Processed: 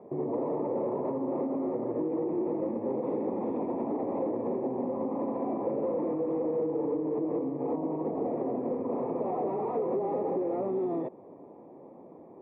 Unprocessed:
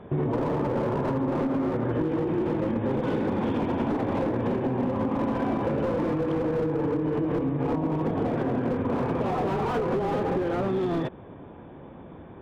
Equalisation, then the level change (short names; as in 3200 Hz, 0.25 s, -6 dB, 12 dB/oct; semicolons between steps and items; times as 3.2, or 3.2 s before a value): running mean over 29 samples; HPF 370 Hz 12 dB/oct; air absorption 480 m; +2.0 dB